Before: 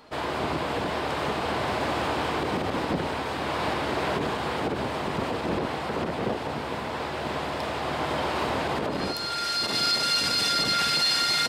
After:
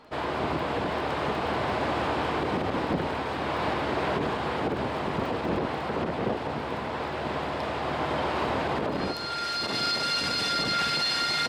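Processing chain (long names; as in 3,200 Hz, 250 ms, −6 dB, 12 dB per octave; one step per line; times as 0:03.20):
low-pass filter 3,300 Hz 6 dB per octave
surface crackle 11 per second −39 dBFS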